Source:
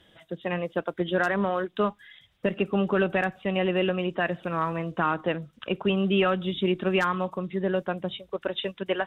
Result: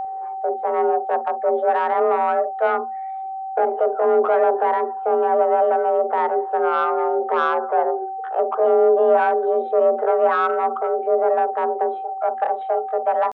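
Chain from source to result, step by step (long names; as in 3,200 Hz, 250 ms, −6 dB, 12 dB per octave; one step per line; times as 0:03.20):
Chebyshev band-pass filter 150–1,100 Hz, order 3
in parallel at +2 dB: brickwall limiter −25 dBFS, peak gain reduction 11 dB
on the sum: soft clipping −16.5 dBFS, distortion −17 dB
tempo change 0.68×
frequency shifter +230 Hz
steady tone 770 Hz −29 dBFS
on a send at −14.5 dB: convolution reverb, pre-delay 47 ms
on the sum: level +5.5 dB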